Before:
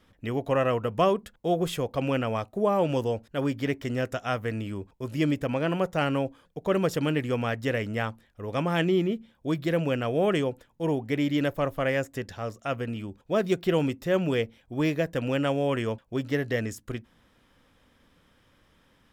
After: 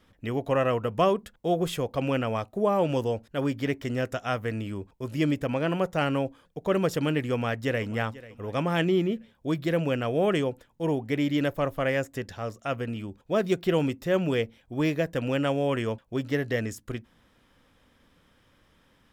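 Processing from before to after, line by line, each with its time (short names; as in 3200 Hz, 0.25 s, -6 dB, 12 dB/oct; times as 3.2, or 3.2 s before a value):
7.32–7.86 echo throw 0.49 s, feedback 40%, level -18 dB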